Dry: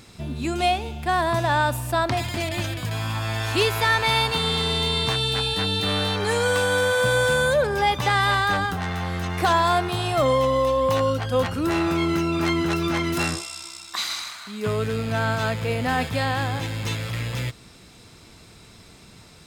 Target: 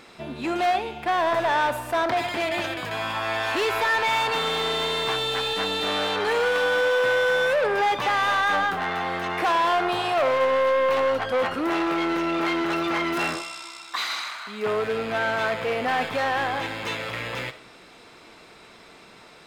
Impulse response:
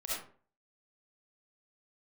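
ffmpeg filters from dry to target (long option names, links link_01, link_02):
-filter_complex "[0:a]equalizer=frequency=85:width=1.4:gain=-7.5,asoftclip=type=hard:threshold=-24dB,bass=frequency=250:gain=-15,treble=frequency=4000:gain=-13,asplit=2[link_01][link_02];[1:a]atrim=start_sample=2205[link_03];[link_02][link_03]afir=irnorm=-1:irlink=0,volume=-15dB[link_04];[link_01][link_04]amix=inputs=2:normalize=0,volume=4.5dB"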